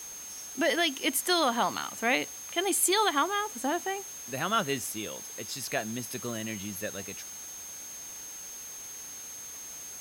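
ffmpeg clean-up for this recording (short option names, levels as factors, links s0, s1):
-af "bandreject=f=6400:w=30,afwtdn=0.0045"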